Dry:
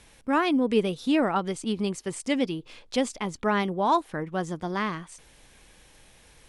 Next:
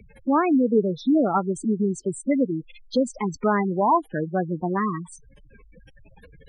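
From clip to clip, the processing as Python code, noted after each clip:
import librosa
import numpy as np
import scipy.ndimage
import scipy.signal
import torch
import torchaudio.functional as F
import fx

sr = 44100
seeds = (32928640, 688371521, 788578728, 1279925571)

y = fx.spec_gate(x, sr, threshold_db=-10, keep='strong')
y = fx.band_squash(y, sr, depth_pct=40)
y = y * librosa.db_to_amplitude(4.5)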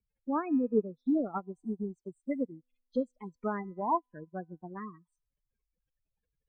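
y = fx.low_shelf(x, sr, hz=93.0, db=8.5)
y = fx.comb_fb(y, sr, f0_hz=250.0, decay_s=1.3, harmonics='all', damping=0.0, mix_pct=30)
y = fx.upward_expand(y, sr, threshold_db=-41.0, expansion=2.5)
y = y * librosa.db_to_amplitude(-3.5)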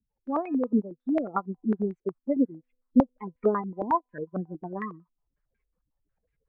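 y = fx.rider(x, sr, range_db=4, speed_s=0.5)
y = fx.filter_held_lowpass(y, sr, hz=11.0, low_hz=260.0, high_hz=2100.0)
y = y * librosa.db_to_amplitude(2.0)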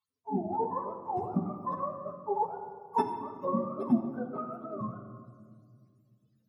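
y = fx.octave_mirror(x, sr, pivot_hz=480.0)
y = fx.room_shoebox(y, sr, seeds[0], volume_m3=3100.0, walls='mixed', distance_m=1.5)
y = y * librosa.db_to_amplitude(-4.0)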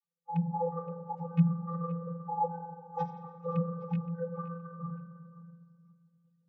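y = fx.rattle_buzz(x, sr, strikes_db=-27.0, level_db=-22.0)
y = fx.vocoder(y, sr, bands=32, carrier='square', carrier_hz=169.0)
y = fx.echo_feedback(y, sr, ms=520, feedback_pct=18, wet_db=-18)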